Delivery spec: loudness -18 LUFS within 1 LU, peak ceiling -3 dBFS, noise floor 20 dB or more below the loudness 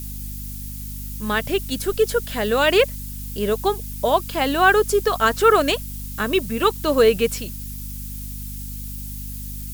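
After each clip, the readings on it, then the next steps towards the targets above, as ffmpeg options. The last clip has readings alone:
hum 50 Hz; highest harmonic 250 Hz; hum level -31 dBFS; noise floor -32 dBFS; noise floor target -40 dBFS; loudness -20.0 LUFS; peak level -3.0 dBFS; loudness target -18.0 LUFS
-> -af "bandreject=f=50:t=h:w=6,bandreject=f=100:t=h:w=6,bandreject=f=150:t=h:w=6,bandreject=f=200:t=h:w=6,bandreject=f=250:t=h:w=6"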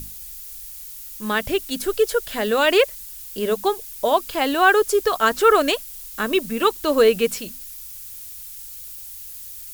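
hum not found; noise floor -37 dBFS; noise floor target -40 dBFS
-> -af "afftdn=nr=6:nf=-37"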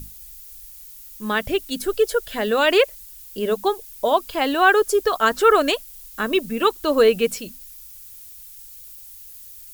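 noise floor -42 dBFS; loudness -20.0 LUFS; peak level -3.5 dBFS; loudness target -18.0 LUFS
-> -af "volume=1.26,alimiter=limit=0.708:level=0:latency=1"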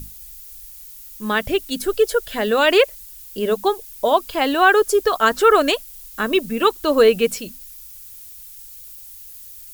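loudness -18.0 LUFS; peak level -3.0 dBFS; noise floor -40 dBFS

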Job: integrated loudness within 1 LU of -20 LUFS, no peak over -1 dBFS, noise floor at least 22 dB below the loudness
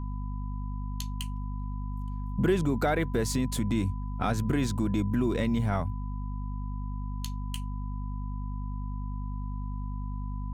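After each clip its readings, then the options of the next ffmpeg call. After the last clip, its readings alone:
hum 50 Hz; highest harmonic 250 Hz; hum level -31 dBFS; steady tone 1 kHz; tone level -47 dBFS; loudness -32.0 LUFS; peak level -14.5 dBFS; loudness target -20.0 LUFS
-> -af "bandreject=f=50:t=h:w=4,bandreject=f=100:t=h:w=4,bandreject=f=150:t=h:w=4,bandreject=f=200:t=h:w=4,bandreject=f=250:t=h:w=4"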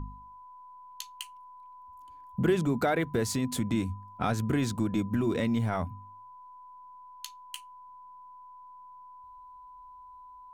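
hum not found; steady tone 1 kHz; tone level -47 dBFS
-> -af "bandreject=f=1000:w=30"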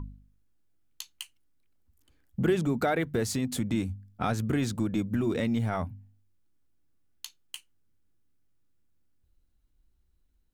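steady tone not found; loudness -29.5 LUFS; peak level -15.0 dBFS; loudness target -20.0 LUFS
-> -af "volume=2.99"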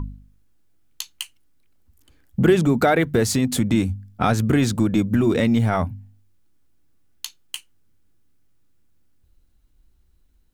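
loudness -20.0 LUFS; peak level -5.5 dBFS; noise floor -59 dBFS

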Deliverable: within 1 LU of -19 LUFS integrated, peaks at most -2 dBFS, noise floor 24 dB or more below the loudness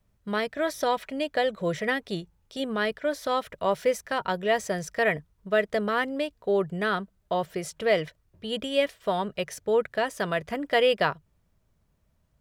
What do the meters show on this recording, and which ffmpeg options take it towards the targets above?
loudness -27.5 LUFS; peak level -9.0 dBFS; loudness target -19.0 LUFS
-> -af "volume=2.66,alimiter=limit=0.794:level=0:latency=1"

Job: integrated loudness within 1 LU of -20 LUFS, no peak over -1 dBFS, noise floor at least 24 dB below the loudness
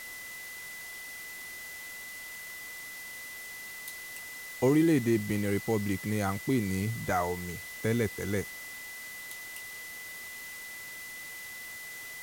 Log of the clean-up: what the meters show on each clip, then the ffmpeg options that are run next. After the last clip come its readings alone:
steady tone 2 kHz; tone level -42 dBFS; noise floor -43 dBFS; noise floor target -58 dBFS; loudness -33.5 LUFS; peak level -15.0 dBFS; loudness target -20.0 LUFS
-> -af "bandreject=f=2000:w=30"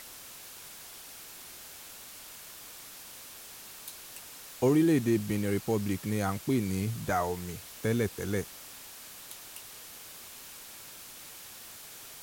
steady tone not found; noise floor -48 dBFS; noise floor target -55 dBFS
-> -af "afftdn=nr=7:nf=-48"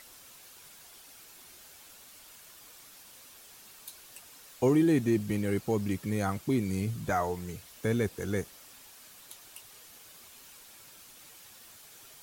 noise floor -53 dBFS; noise floor target -54 dBFS
-> -af "afftdn=nr=6:nf=-53"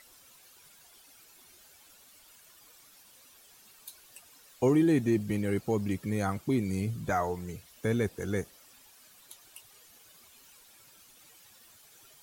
noise floor -58 dBFS; loudness -30.0 LUFS; peak level -15.0 dBFS; loudness target -20.0 LUFS
-> -af "volume=3.16"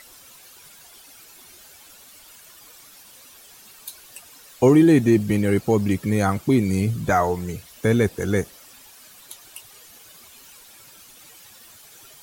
loudness -20.0 LUFS; peak level -5.0 dBFS; noise floor -48 dBFS

